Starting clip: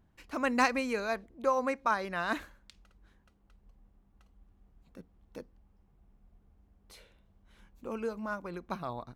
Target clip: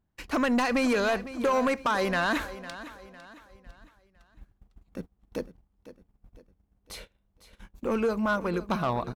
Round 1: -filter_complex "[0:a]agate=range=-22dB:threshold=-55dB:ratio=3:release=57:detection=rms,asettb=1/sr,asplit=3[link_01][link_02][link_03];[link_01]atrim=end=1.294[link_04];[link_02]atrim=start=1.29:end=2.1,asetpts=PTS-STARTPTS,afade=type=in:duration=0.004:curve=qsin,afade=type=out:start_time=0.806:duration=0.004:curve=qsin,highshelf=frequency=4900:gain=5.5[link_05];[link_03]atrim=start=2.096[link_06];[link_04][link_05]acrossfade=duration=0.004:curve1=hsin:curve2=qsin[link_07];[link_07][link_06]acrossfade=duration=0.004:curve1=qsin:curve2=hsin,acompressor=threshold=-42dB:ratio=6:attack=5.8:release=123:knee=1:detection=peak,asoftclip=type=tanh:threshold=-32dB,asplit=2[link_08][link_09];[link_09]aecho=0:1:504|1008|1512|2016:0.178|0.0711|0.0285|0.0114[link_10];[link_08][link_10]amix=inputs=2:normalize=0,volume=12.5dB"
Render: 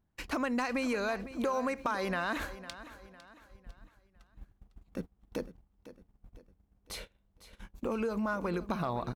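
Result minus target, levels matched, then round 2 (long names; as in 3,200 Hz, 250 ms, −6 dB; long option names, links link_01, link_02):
downward compressor: peak gain reduction +10 dB
-filter_complex "[0:a]agate=range=-22dB:threshold=-55dB:ratio=3:release=57:detection=rms,asettb=1/sr,asplit=3[link_01][link_02][link_03];[link_01]atrim=end=1.294[link_04];[link_02]atrim=start=1.29:end=2.1,asetpts=PTS-STARTPTS,afade=type=in:duration=0.004:curve=qsin,afade=type=out:start_time=0.806:duration=0.004:curve=qsin,highshelf=frequency=4900:gain=5.5[link_05];[link_03]atrim=start=2.096[link_06];[link_04][link_05]acrossfade=duration=0.004:curve1=hsin:curve2=qsin[link_07];[link_07][link_06]acrossfade=duration=0.004:curve1=qsin:curve2=hsin,acompressor=threshold=-30dB:ratio=6:attack=5.8:release=123:knee=1:detection=peak,asoftclip=type=tanh:threshold=-32dB,asplit=2[link_08][link_09];[link_09]aecho=0:1:504|1008|1512|2016:0.178|0.0711|0.0285|0.0114[link_10];[link_08][link_10]amix=inputs=2:normalize=0,volume=12.5dB"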